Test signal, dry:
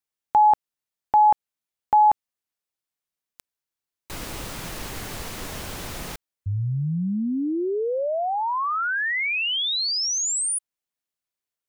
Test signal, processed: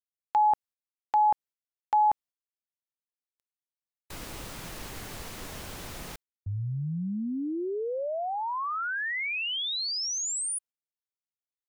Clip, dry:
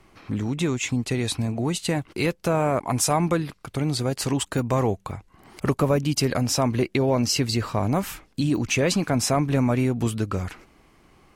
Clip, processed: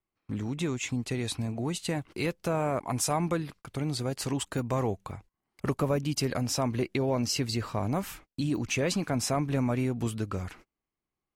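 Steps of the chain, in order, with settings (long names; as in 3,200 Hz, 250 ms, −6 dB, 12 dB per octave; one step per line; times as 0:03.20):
noise gate −43 dBFS, range −28 dB
level −6.5 dB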